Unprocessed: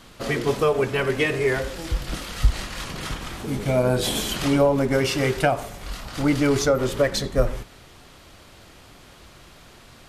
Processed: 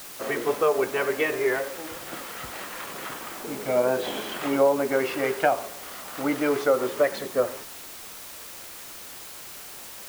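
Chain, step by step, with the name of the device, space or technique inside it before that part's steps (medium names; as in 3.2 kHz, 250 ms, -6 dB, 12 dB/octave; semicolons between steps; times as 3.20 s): wax cylinder (band-pass 370–2100 Hz; wow and flutter; white noise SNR 14 dB)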